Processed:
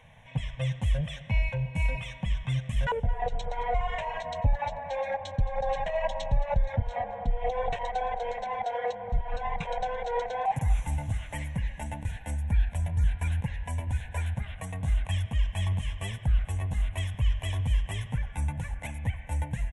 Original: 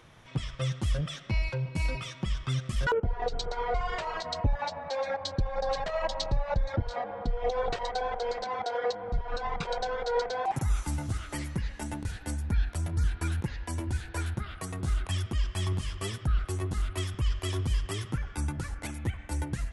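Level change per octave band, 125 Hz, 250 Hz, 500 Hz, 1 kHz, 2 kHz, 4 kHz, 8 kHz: +2.0, -2.5, -1.0, +2.0, 0.0, -4.0, -5.0 dB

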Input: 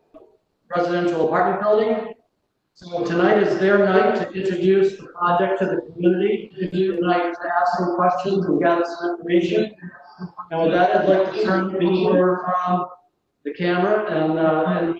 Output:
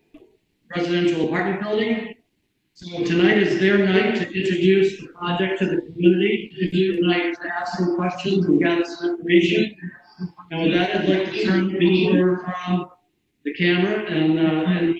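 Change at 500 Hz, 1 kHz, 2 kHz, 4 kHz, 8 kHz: -3.0 dB, -9.0 dB, +2.0 dB, +7.0 dB, n/a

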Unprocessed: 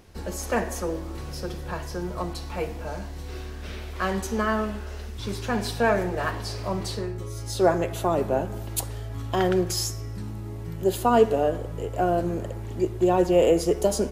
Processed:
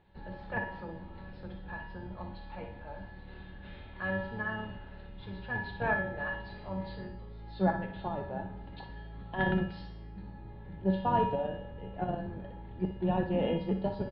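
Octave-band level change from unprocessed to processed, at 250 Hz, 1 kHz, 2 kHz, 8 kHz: -7.5 dB, -7.5 dB, -3.0 dB, under -40 dB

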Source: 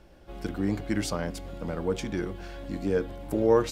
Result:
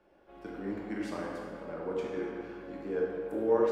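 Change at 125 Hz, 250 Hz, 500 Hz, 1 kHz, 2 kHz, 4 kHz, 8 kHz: -14.5 dB, -6.5 dB, -3.5 dB, -4.5 dB, -5.5 dB, -13.5 dB, under -15 dB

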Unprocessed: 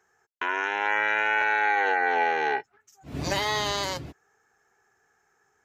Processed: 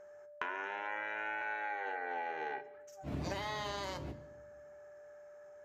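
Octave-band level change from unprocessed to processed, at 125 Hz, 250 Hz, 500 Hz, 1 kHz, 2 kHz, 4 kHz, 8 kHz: -7.0, -8.0, -11.5, -14.0, -15.0, -15.5, -16.5 dB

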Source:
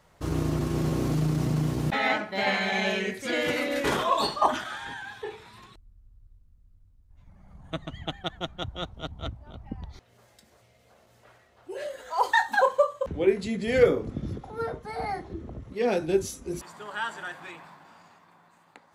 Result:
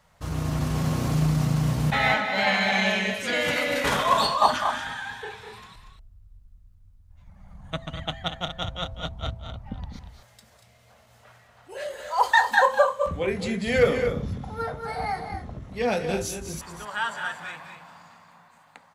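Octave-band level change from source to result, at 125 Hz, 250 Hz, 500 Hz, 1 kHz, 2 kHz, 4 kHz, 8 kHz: +3.5, +0.5, 0.0, +4.0, +4.5, +4.5, +4.5 dB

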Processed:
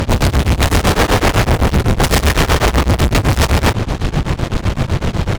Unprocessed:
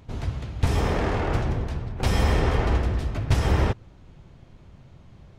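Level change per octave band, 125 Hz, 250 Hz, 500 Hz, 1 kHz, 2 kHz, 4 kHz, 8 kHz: +10.5, +13.0, +12.0, +13.5, +15.0, +17.0, +19.5 dB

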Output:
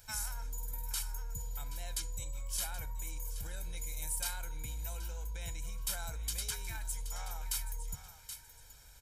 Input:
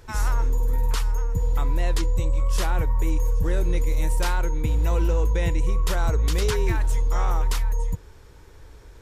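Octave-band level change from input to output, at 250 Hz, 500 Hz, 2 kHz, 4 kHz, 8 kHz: -25.0, -24.5, -12.5, -7.0, -1.0 dB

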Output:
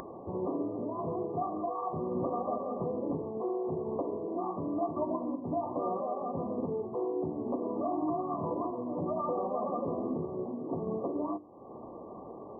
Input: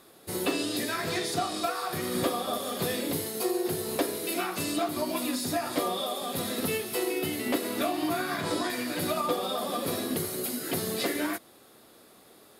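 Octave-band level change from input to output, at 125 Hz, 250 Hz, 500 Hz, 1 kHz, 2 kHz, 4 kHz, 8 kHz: -2.0 dB, -2.5 dB, -1.5 dB, -2.5 dB, under -35 dB, under -40 dB, under -40 dB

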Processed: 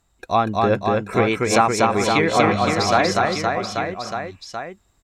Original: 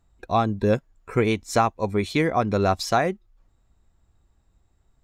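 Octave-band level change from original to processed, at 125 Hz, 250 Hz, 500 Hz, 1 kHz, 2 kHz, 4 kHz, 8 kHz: +1.5, +3.5, +5.0, +6.5, +8.5, +8.5, +9.0 dB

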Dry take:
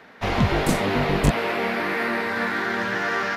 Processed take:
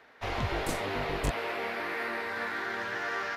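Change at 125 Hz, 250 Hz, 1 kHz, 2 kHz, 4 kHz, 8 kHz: -13.0, -14.5, -9.0, -8.5, -8.5, -8.5 dB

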